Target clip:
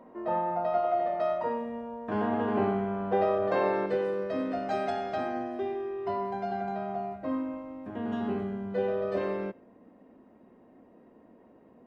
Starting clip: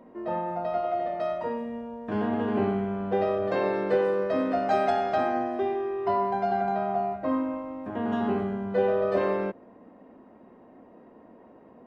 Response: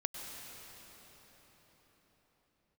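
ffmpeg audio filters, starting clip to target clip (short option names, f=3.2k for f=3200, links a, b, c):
-filter_complex "[0:a]asetnsamples=n=441:p=0,asendcmd='3.86 equalizer g -4.5',equalizer=f=950:t=o:w=1.8:g=5.5[a];[1:a]atrim=start_sample=2205,afade=t=out:st=0.14:d=0.01,atrim=end_sample=6615[b];[a][b]afir=irnorm=-1:irlink=0,volume=-2dB"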